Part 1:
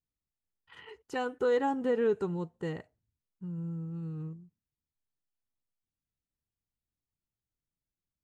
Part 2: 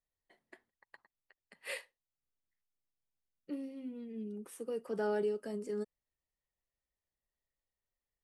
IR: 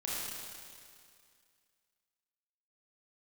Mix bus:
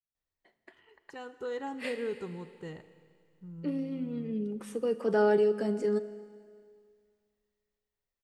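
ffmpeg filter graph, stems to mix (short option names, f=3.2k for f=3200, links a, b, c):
-filter_complex "[0:a]adynamicequalizer=threshold=0.00501:dfrequency=2200:dqfactor=0.7:tfrequency=2200:tqfactor=0.7:attack=5:release=100:ratio=0.375:range=2:mode=boostabove:tftype=highshelf,volume=-16dB,asplit=3[a][b][c];[b]volume=-15.5dB[d];[1:a]equalizer=f=11k:t=o:w=0.78:g=-12,adelay=150,volume=0dB,asplit=2[e][f];[f]volume=-16.5dB[g];[c]apad=whole_len=369662[h];[e][h]sidechaincompress=threshold=-51dB:ratio=8:attack=46:release=448[i];[2:a]atrim=start_sample=2205[j];[d][g]amix=inputs=2:normalize=0[k];[k][j]afir=irnorm=-1:irlink=0[l];[a][i][l]amix=inputs=3:normalize=0,dynaudnorm=f=290:g=9:m=8dB"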